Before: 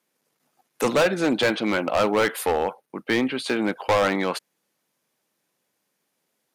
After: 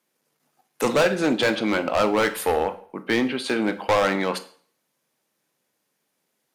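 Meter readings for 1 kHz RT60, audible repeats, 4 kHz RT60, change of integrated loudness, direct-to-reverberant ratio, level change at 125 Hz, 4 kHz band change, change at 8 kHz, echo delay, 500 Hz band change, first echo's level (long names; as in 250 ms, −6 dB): 0.50 s, no echo audible, 0.45 s, +0.5 dB, 10.0 dB, 0.0 dB, +0.5 dB, +0.5 dB, no echo audible, +0.5 dB, no echo audible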